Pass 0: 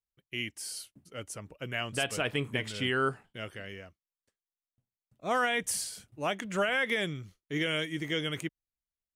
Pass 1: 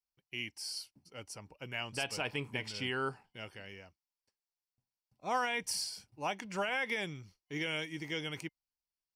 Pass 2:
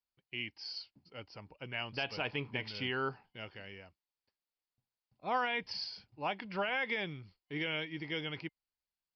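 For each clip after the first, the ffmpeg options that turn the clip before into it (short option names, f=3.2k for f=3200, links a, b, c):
-af "superequalizer=9b=2.51:12b=1.58:14b=3.16,volume=-7dB"
-af "aresample=11025,aresample=44100"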